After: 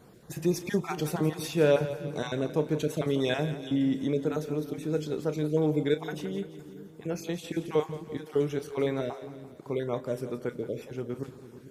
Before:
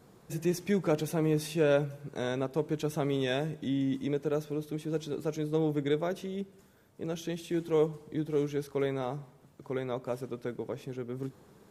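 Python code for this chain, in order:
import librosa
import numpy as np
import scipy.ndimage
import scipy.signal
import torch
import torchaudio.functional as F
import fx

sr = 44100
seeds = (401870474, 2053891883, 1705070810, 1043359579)

p1 = fx.spec_dropout(x, sr, seeds[0], share_pct=23)
p2 = fx.doubler(p1, sr, ms=33.0, db=-13.5)
p3 = p2 + fx.echo_split(p2, sr, split_hz=360.0, low_ms=444, high_ms=171, feedback_pct=52, wet_db=-13.0, dry=0)
y = p3 * librosa.db_to_amplitude(3.0)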